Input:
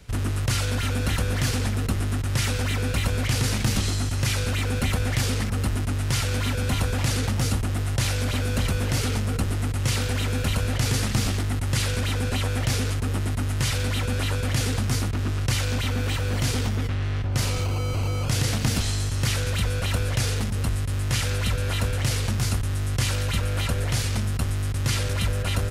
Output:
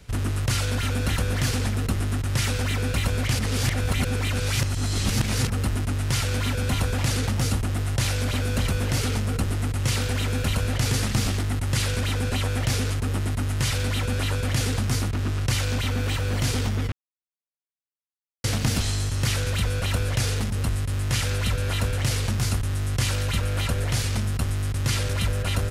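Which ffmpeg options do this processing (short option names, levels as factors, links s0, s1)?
-filter_complex "[0:a]asplit=5[s0][s1][s2][s3][s4];[s0]atrim=end=3.392[s5];[s1]atrim=start=3.388:end=5.472,asetpts=PTS-STARTPTS,areverse[s6];[s2]atrim=start=5.468:end=16.92,asetpts=PTS-STARTPTS,afade=t=out:st=11.448:d=0.004:c=hsin[s7];[s3]atrim=start=16.92:end=18.44,asetpts=PTS-STARTPTS,volume=0[s8];[s4]atrim=start=18.44,asetpts=PTS-STARTPTS,afade=t=in:d=0.004:c=hsin[s9];[s5][s6]acrossfade=d=0.004:c1=hsin:c2=hsin[s10];[s7][s8][s9]concat=n=3:v=0:a=1[s11];[s10][s11]acrossfade=d=0.004:c1=hsin:c2=hsin"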